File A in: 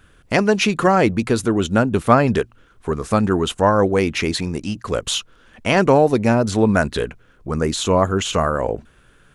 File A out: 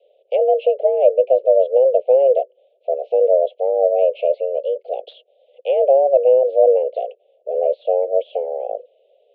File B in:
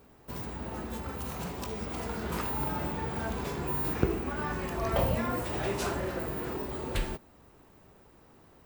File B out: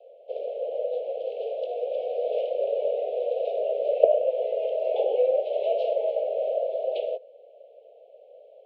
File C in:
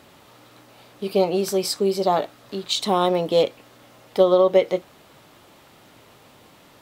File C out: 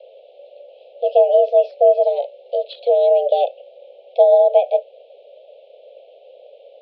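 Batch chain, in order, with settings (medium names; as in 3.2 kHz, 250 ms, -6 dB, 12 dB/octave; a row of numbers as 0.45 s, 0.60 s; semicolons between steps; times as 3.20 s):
inverse Chebyshev band-stop 700–1600 Hz, stop band 60 dB; low-pass that closes with the level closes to 1.6 kHz, closed at -20.5 dBFS; mistuned SSB +270 Hz 240–2300 Hz; peak normalisation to -2 dBFS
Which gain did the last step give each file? +10.5 dB, +17.0 dB, +17.5 dB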